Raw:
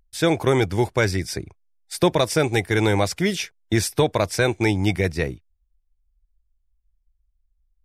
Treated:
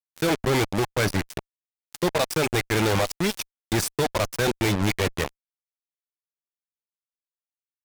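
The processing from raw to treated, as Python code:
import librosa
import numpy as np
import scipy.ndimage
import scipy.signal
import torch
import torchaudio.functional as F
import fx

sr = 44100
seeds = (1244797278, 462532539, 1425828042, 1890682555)

y = fx.cheby_harmonics(x, sr, harmonics=(4, 7), levels_db=(-39, -16), full_scale_db=-7.5)
y = fx.dereverb_blind(y, sr, rt60_s=0.65)
y = fx.fuzz(y, sr, gain_db=40.0, gate_db=-40.0)
y = F.gain(torch.from_numpy(y), -5.5).numpy()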